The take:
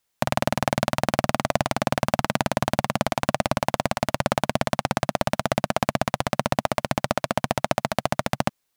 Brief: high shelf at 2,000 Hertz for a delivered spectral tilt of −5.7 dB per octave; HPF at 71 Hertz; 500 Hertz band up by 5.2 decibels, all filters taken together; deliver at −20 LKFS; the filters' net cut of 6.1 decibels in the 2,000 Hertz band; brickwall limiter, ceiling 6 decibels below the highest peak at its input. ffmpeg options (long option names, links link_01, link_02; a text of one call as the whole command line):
ffmpeg -i in.wav -af "highpass=71,equalizer=frequency=500:width_type=o:gain=8,highshelf=frequency=2000:gain=-7,equalizer=frequency=2000:width_type=o:gain=-4.5,volume=7dB,alimiter=limit=-2dB:level=0:latency=1" out.wav